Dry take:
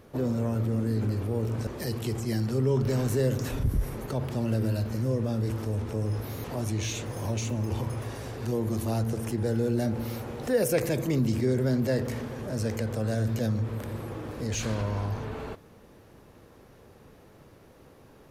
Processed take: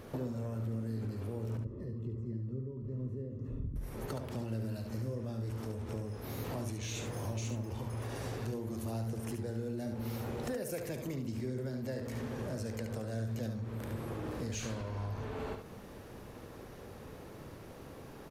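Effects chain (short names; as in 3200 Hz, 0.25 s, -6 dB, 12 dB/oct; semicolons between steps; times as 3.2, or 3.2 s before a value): compressor 8:1, threshold -40 dBFS, peak gain reduction 19.5 dB; 1.57–3.76 running mean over 57 samples; echo 71 ms -6.5 dB; gain +3.5 dB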